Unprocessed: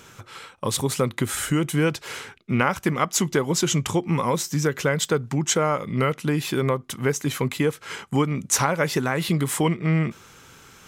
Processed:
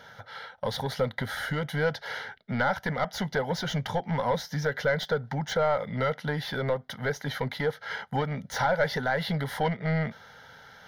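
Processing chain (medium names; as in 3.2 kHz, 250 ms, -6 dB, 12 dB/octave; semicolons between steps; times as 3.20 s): overdrive pedal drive 19 dB, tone 1.1 kHz, clips at -5 dBFS; static phaser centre 1.7 kHz, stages 8; trim -4 dB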